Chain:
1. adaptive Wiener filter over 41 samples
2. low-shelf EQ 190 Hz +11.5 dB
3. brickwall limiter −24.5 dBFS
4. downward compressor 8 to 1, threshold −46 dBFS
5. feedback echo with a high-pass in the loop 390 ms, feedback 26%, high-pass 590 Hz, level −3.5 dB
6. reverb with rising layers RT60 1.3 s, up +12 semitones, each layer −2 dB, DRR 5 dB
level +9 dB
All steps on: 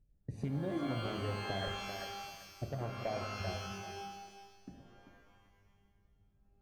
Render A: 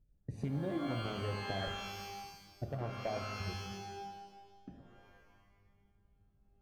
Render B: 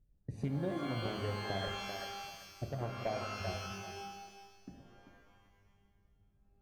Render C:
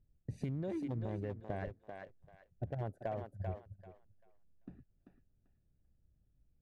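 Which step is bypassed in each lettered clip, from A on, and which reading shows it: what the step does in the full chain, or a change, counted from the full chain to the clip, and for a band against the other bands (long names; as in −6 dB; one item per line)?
5, change in momentary loudness spread +1 LU
3, average gain reduction 2.5 dB
6, 2 kHz band −8.5 dB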